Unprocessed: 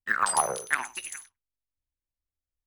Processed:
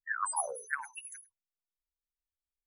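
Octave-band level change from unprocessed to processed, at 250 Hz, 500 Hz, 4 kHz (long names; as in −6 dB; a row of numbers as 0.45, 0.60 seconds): below −25 dB, −8.0 dB, −16.5 dB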